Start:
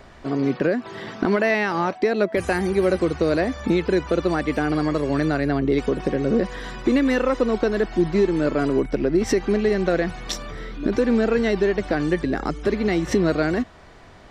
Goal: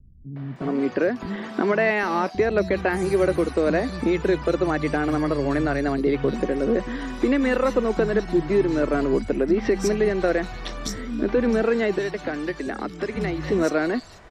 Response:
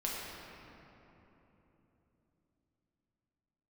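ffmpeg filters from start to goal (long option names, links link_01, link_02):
-filter_complex "[0:a]asettb=1/sr,asplit=3[link_01][link_02][link_03];[link_01]atrim=end=11.624[link_04];[link_02]atrim=start=11.62:end=13.16,asetpts=PTS-STARTPTS,afade=type=in:duration=0.004:curve=qsin,afade=type=out:start_time=1.536:duration=0.004:curve=qsin,acrossover=split=150|560|1500[link_05][link_06][link_07][link_08];[link_05]acompressor=threshold=-47dB:ratio=4[link_09];[link_06]acompressor=threshold=-27dB:ratio=4[link_10];[link_07]acompressor=threshold=-33dB:ratio=4[link_11];[link_08]acompressor=threshold=-33dB:ratio=4[link_12];[link_09][link_10][link_11][link_12]amix=inputs=4:normalize=0[link_13];[link_03]atrim=start=13.156[link_14];[link_04][link_13]acrossfade=duration=0.004:curve1=hsin:curve2=qsin[link_15];[link_15][link_14]acrossfade=duration=0.004:curve1=qsin:curve2=hsin,acrossover=split=190|3900[link_16][link_17][link_18];[link_17]adelay=360[link_19];[link_18]adelay=560[link_20];[link_16][link_19][link_20]amix=inputs=3:normalize=0"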